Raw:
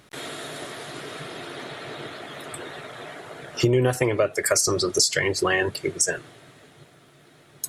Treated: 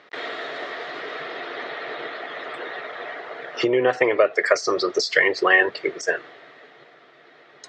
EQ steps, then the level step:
high-frequency loss of the air 59 metres
loudspeaker in its box 360–5,000 Hz, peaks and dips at 470 Hz +5 dB, 710 Hz +4 dB, 1,200 Hz +4 dB, 1,900 Hz +8 dB
+2.0 dB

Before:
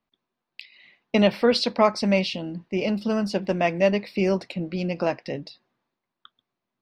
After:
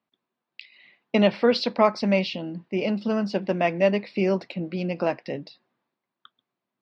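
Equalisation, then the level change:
high-pass filter 130 Hz
low-pass filter 5,900 Hz 12 dB per octave
high-frequency loss of the air 67 metres
0.0 dB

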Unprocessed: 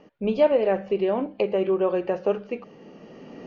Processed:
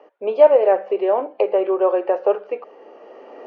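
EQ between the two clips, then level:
high-pass filter 360 Hz 24 dB per octave
low-pass filter 3,200 Hz 6 dB per octave
parametric band 770 Hz +12 dB 2.6 octaves
−3.0 dB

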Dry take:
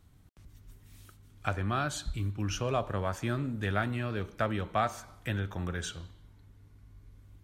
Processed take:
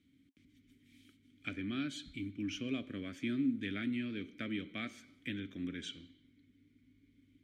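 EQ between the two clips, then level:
formant filter i
high-shelf EQ 6,200 Hz +10 dB
notch filter 2,900 Hz, Q 30
+7.5 dB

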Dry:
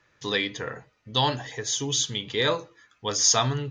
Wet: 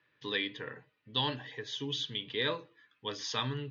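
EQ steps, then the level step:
Butterworth band-reject 690 Hz, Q 7.1
loudspeaker in its box 170–3,600 Hz, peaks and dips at 200 Hz −6 dB, 360 Hz −5 dB, 540 Hz −8 dB, 840 Hz −8 dB, 1,300 Hz −9 dB, 2,200 Hz −4 dB
−3.5 dB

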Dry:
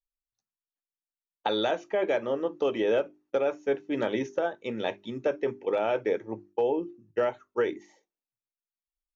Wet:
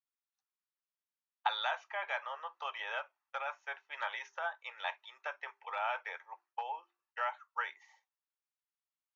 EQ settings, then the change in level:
Butterworth high-pass 880 Hz 36 dB per octave
low-pass filter 5,900 Hz 12 dB per octave
high-shelf EQ 2,400 Hz −11 dB
+3.5 dB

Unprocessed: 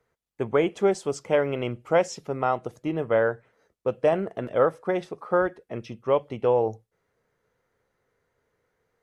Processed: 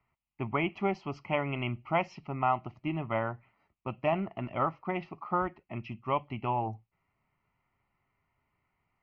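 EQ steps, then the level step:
transistor ladder low-pass 3,900 Hz, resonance 40%
high-frequency loss of the air 140 metres
phaser with its sweep stopped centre 2,400 Hz, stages 8
+8.5 dB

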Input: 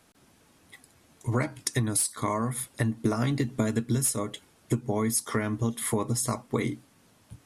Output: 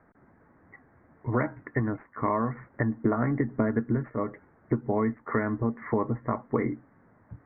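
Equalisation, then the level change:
Butterworth low-pass 2,000 Hz 72 dB per octave
dynamic equaliser 110 Hz, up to −5 dB, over −40 dBFS, Q 0.99
+2.5 dB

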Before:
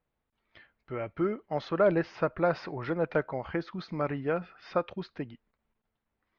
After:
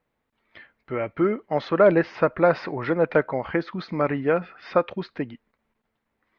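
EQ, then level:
graphic EQ with 10 bands 125 Hz +3 dB, 250 Hz +7 dB, 500 Hz +6 dB, 1,000 Hz +5 dB, 2,000 Hz +8 dB, 4,000 Hz +4 dB
0.0 dB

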